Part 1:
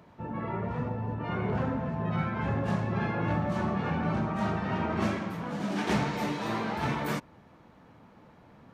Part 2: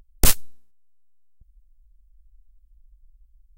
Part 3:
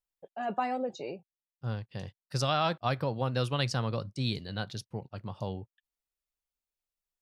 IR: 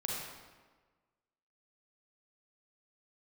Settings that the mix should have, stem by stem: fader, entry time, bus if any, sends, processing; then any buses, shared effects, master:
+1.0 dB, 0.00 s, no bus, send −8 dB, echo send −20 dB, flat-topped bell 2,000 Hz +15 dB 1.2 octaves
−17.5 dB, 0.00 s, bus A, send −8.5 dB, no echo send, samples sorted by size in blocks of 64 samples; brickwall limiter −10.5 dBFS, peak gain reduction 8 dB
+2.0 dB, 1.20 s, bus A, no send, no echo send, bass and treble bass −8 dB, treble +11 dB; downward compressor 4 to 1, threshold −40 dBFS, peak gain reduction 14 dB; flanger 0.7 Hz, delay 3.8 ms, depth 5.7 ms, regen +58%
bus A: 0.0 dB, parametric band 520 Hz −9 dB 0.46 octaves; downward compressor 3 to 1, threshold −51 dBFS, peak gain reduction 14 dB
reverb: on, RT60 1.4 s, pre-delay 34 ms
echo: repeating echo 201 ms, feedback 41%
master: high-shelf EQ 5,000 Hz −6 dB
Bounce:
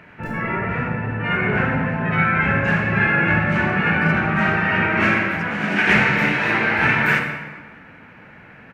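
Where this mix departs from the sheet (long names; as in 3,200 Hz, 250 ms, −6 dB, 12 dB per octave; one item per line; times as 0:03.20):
stem 2 −17.5 dB → −26.0 dB
stem 3: entry 1.20 s → 1.70 s
reverb return +8.0 dB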